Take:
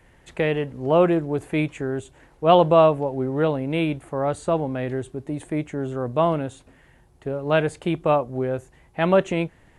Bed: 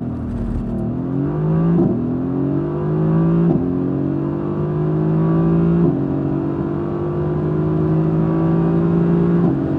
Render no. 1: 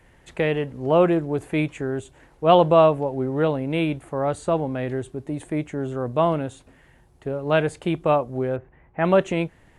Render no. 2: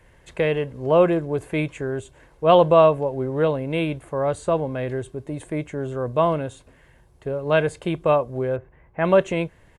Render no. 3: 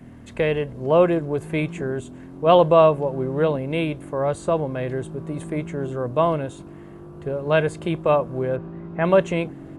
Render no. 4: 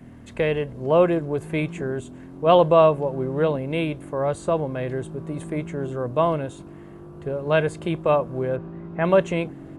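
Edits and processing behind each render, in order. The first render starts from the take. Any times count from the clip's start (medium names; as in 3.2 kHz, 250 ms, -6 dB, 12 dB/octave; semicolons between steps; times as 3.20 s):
8.56–9.05 s: low-pass 2.2 kHz 24 dB/octave
comb 1.9 ms, depth 30%
add bed -20 dB
trim -1 dB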